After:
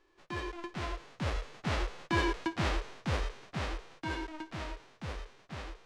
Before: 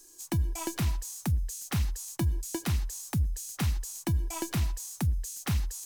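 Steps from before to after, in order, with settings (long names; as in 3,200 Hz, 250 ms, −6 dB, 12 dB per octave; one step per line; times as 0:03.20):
spectral envelope flattened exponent 0.1
source passing by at 0:02.32, 17 m/s, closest 13 metres
head-to-tape spacing loss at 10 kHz 37 dB
level +6.5 dB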